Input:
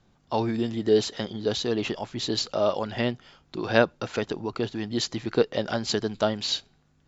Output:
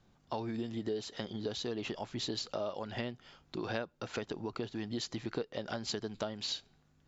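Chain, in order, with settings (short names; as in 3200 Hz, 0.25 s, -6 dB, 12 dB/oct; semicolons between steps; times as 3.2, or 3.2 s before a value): compressor 6:1, threshold -30 dBFS, peak gain reduction 16 dB; gain -4 dB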